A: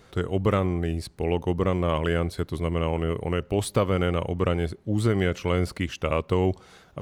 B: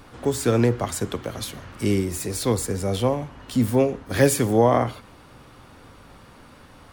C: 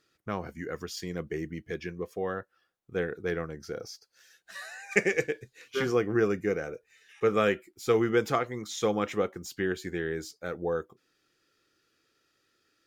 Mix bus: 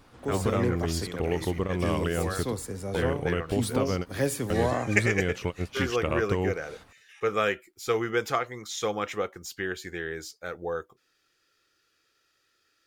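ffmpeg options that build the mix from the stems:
ffmpeg -i stem1.wav -i stem2.wav -i stem3.wav -filter_complex "[0:a]acompressor=threshold=-25dB:ratio=3,volume=0dB[link_01];[1:a]volume=-9.5dB[link_02];[2:a]equalizer=frequency=220:width=0.58:gain=-9,volume=2.5dB,asplit=2[link_03][link_04];[link_04]apad=whole_len=309293[link_05];[link_01][link_05]sidechaingate=range=-43dB:threshold=-49dB:ratio=16:detection=peak[link_06];[link_06][link_02][link_03]amix=inputs=3:normalize=0" out.wav

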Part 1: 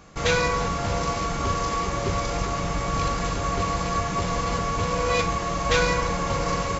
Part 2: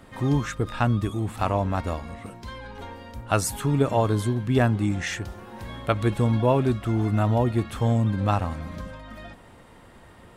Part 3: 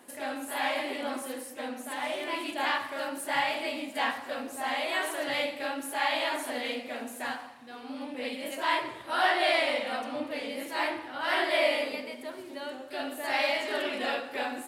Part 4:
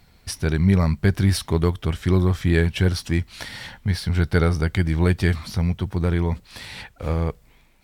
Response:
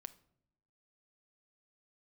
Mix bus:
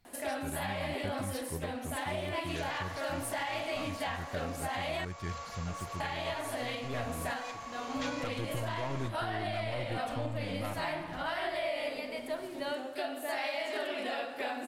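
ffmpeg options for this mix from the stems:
-filter_complex "[0:a]highpass=frequency=520:width=0.5412,highpass=frequency=520:width=1.3066,adelay=2300,volume=-15dB[link_01];[1:a]aecho=1:1:6.6:0.9,aeval=exprs='(tanh(11.2*val(0)+0.7)-tanh(0.7))/11.2':channel_layout=same,adelay=2350,volume=-5.5dB[link_02];[2:a]equalizer=frequency=670:width=7.6:gain=8,alimiter=limit=-21dB:level=0:latency=1:release=410,adelay=50,volume=2.5dB,asplit=3[link_03][link_04][link_05];[link_03]atrim=end=5.05,asetpts=PTS-STARTPTS,afade=type=out:start_time=5.046:duration=0.004:curve=hsin[link_06];[link_04]atrim=start=5.05:end=6,asetpts=PTS-STARTPTS,volume=0[link_07];[link_05]atrim=start=6,asetpts=PTS-STARTPTS,afade=type=in:duration=0.004:curve=hsin[link_08];[link_06][link_07][link_08]concat=n=3:v=0:a=1[link_09];[3:a]volume=-17dB,asplit=2[link_10][link_11];[link_11]apad=whole_len=561217[link_12];[link_02][link_12]sidechaincompress=threshold=-51dB:ratio=8:attack=16:release=769[link_13];[link_01][link_13][link_09][link_10]amix=inputs=4:normalize=0,alimiter=level_in=1.5dB:limit=-24dB:level=0:latency=1:release=424,volume=-1.5dB"

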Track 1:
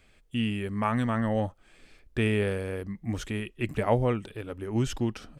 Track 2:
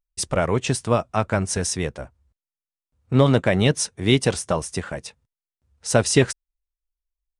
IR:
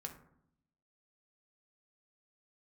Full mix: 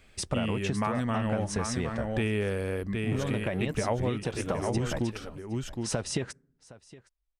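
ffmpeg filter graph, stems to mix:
-filter_complex "[0:a]volume=2.5dB,asplit=2[link_01][link_02];[link_02]volume=-8.5dB[link_03];[1:a]alimiter=limit=-8.5dB:level=0:latency=1:release=368,acompressor=threshold=-25dB:ratio=6,highshelf=frequency=5200:gain=-11,volume=1dB,asplit=3[link_04][link_05][link_06];[link_05]volume=-23dB[link_07];[link_06]volume=-22.5dB[link_08];[2:a]atrim=start_sample=2205[link_09];[link_07][link_09]afir=irnorm=-1:irlink=0[link_10];[link_03][link_08]amix=inputs=2:normalize=0,aecho=0:1:764:1[link_11];[link_01][link_04][link_10][link_11]amix=inputs=4:normalize=0,acompressor=threshold=-25dB:ratio=6"

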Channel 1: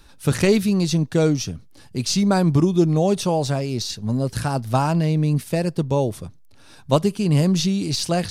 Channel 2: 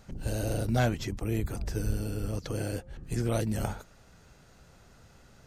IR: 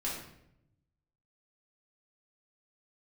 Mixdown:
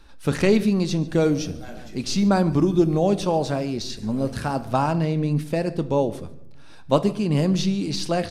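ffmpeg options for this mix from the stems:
-filter_complex "[0:a]highshelf=frequency=5800:gain=-11.5,volume=-1.5dB,asplit=4[link_01][link_02][link_03][link_04];[link_02]volume=-14dB[link_05];[link_03]volume=-21.5dB[link_06];[1:a]adelay=850,volume=-10dB,asplit=3[link_07][link_08][link_09];[link_08]volume=-8.5dB[link_10];[link_09]volume=-9.5dB[link_11];[link_04]apad=whole_len=278367[link_12];[link_07][link_12]sidechaincompress=threshold=-28dB:ratio=8:attack=16:release=883[link_13];[2:a]atrim=start_sample=2205[link_14];[link_05][link_10]amix=inputs=2:normalize=0[link_15];[link_15][link_14]afir=irnorm=-1:irlink=0[link_16];[link_06][link_11]amix=inputs=2:normalize=0,aecho=0:1:144:1[link_17];[link_01][link_13][link_16][link_17]amix=inputs=4:normalize=0,equalizer=frequency=120:width_type=o:width=0.68:gain=-8"

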